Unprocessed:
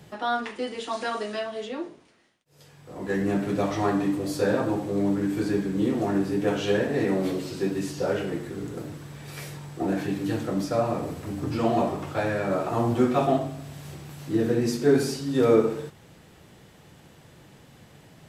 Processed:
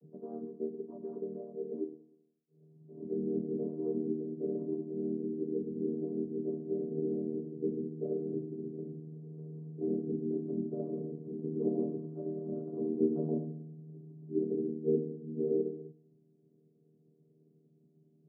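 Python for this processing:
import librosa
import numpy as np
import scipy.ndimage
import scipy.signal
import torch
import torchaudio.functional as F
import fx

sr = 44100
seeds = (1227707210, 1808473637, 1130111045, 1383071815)

p1 = fx.chord_vocoder(x, sr, chord='major triad', root=51)
p2 = fx.ladder_lowpass(p1, sr, hz=440.0, resonance_pct=60)
p3 = p2 + 0.59 * np.pad(p2, (int(7.1 * sr / 1000.0), 0))[:len(p2)]
p4 = p3 + fx.echo_feedback(p3, sr, ms=103, feedback_pct=48, wet_db=-22, dry=0)
p5 = fx.rider(p4, sr, range_db=4, speed_s=2.0)
y = p5 * 10.0 ** (-4.5 / 20.0)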